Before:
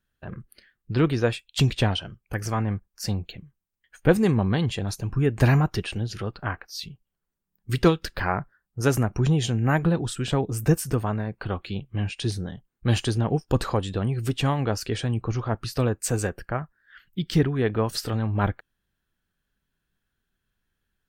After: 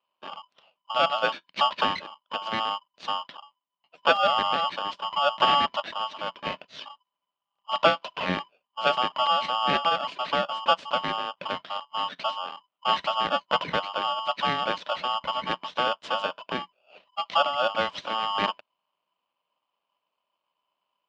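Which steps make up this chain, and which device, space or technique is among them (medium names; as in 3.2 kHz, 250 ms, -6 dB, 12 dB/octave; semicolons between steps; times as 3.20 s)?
ring modulator pedal into a guitar cabinet (polarity switched at an audio rate 1 kHz; cabinet simulation 87–4100 Hz, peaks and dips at 110 Hz -5 dB, 180 Hz +8 dB, 270 Hz +4 dB, 600 Hz +8 dB, 1.2 kHz +3 dB, 3 kHz +6 dB); trim -5 dB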